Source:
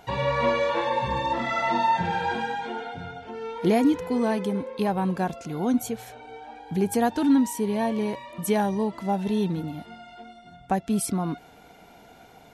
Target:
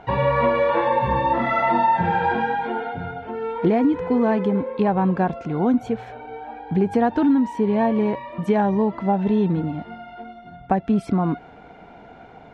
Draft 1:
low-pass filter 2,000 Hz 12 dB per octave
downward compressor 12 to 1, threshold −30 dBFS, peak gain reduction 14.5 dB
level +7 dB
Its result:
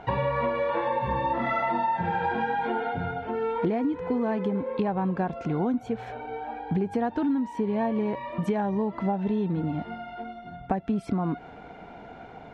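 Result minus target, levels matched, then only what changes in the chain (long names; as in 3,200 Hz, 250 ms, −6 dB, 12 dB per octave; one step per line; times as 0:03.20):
downward compressor: peak gain reduction +8.5 dB
change: downward compressor 12 to 1, threshold −21 dBFS, peak gain reduction 6.5 dB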